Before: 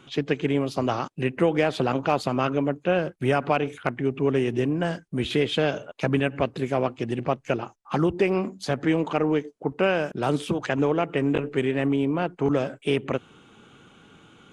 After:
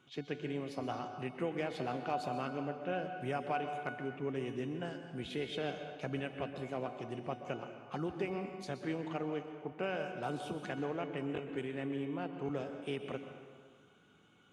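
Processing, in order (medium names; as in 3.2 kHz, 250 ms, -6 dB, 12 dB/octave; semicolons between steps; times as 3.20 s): high-pass 57 Hz; feedback comb 730 Hz, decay 0.4 s, mix 80%; on a send: reverberation RT60 1.8 s, pre-delay 115 ms, DRR 7 dB; on the sum: trim -2 dB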